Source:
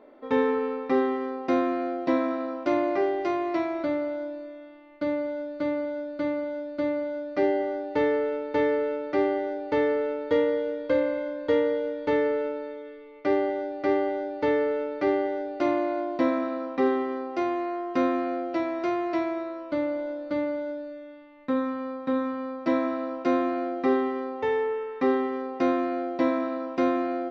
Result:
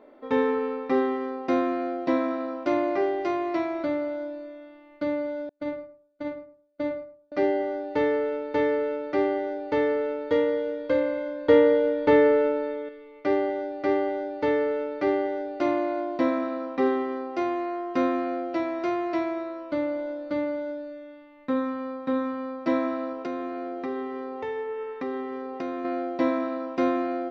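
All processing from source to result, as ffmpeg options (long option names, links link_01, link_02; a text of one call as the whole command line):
ffmpeg -i in.wav -filter_complex "[0:a]asettb=1/sr,asplit=3[link_01][link_02][link_03];[link_01]atrim=end=5.494[link_04];[link_02]atrim=start=5.49:end=7.32,asetpts=PTS-STARTPTS,afade=type=in:duration=0.004:curve=qsin,afade=type=out:start_time=1.826:duration=0.004:curve=qsin,agate=range=-38dB:threshold=-27dB:ratio=16:release=100:detection=peak,asplit=2[link_05][link_06];[link_06]adelay=107,lowpass=frequency=930:poles=1,volume=-8dB,asplit=2[link_07][link_08];[link_08]adelay=107,lowpass=frequency=930:poles=1,volume=0.27,asplit=2[link_09][link_10];[link_10]adelay=107,lowpass=frequency=930:poles=1,volume=0.27[link_11];[link_05][link_07][link_09][link_11]amix=inputs=4:normalize=0,atrim=end_sample=80703[link_12];[link_03]atrim=start=7.316[link_13];[link_04][link_12]acrossfade=duration=0.004:curve1=hsin:curve2=qsin[link_14];[link_14][link_13]acrossfade=duration=0.004:curve1=qsin:curve2=hsin,asettb=1/sr,asplit=3[link_15][link_16][link_17];[link_15]atrim=end=11.484[link_18];[link_16]atrim=start=11.48:end=12.89,asetpts=PTS-STARTPTS,afade=type=in:duration=0.004:curve=qsin,afade=type=out:start_time=1.406:duration=0.004:curve=qsin,acontrast=61,highshelf=frequency=5000:gain=-8.5[link_19];[link_17]atrim=start=12.886[link_20];[link_18][link_19]acrossfade=duration=0.004:curve1=hsin:curve2=qsin[link_21];[link_21][link_20]acrossfade=duration=0.004:curve1=qsin:curve2=hsin,asettb=1/sr,asplit=3[link_22][link_23][link_24];[link_22]atrim=end=23.124[link_25];[link_23]atrim=start=23.12:end=25.85,asetpts=PTS-STARTPTS,afade=type=in:duration=0.004:curve=qsin,afade=type=out:start_time=2.726:duration=0.004:curve=qsin,acompressor=threshold=-30dB:ratio=3:attack=3.2:release=140:knee=1:detection=peak,aeval=exprs='val(0)+0.00282*sin(2*PI*430*n/s)':channel_layout=same[link_26];[link_24]atrim=start=25.846[link_27];[link_25][link_26]acrossfade=duration=0.004:curve1=hsin:curve2=qsin[link_28];[link_28][link_27]acrossfade=duration=0.004:curve1=qsin:curve2=hsin" out.wav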